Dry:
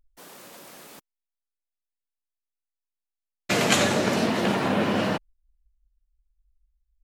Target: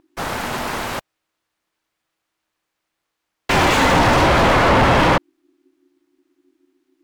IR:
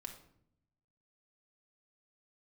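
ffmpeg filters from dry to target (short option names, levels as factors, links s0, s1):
-filter_complex "[0:a]asplit=2[s0][s1];[s1]highpass=f=720:p=1,volume=56.2,asoftclip=type=tanh:threshold=0.501[s2];[s0][s2]amix=inputs=2:normalize=0,lowpass=f=1200:p=1,volume=0.501,aeval=exprs='val(0)*sin(2*PI*320*n/s)':c=same,volume=1.68"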